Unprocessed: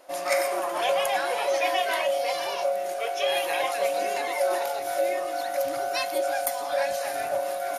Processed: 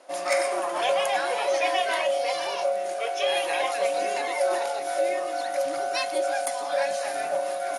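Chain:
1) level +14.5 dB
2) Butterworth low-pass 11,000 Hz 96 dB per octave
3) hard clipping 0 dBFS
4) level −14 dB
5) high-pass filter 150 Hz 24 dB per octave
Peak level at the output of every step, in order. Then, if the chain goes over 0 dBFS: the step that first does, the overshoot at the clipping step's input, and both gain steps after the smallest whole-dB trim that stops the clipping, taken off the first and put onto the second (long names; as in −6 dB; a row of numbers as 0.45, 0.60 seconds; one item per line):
+6.0, +4.0, 0.0, −14.0, −12.0 dBFS
step 1, 4.0 dB
step 1 +10.5 dB, step 4 −10 dB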